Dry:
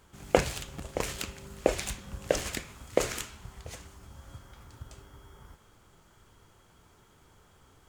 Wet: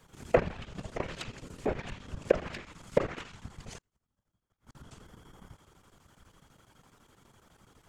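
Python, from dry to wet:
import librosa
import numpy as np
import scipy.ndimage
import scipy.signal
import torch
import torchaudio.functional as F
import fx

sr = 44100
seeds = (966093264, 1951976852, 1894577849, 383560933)

y = fx.env_lowpass_down(x, sr, base_hz=1700.0, full_db=-28.0)
y = fx.whisperise(y, sr, seeds[0])
y = fx.chopper(y, sr, hz=12.0, depth_pct=65, duty_pct=80)
y = fx.gate_flip(y, sr, shuts_db=-42.0, range_db=-34, at=(3.78, 4.75))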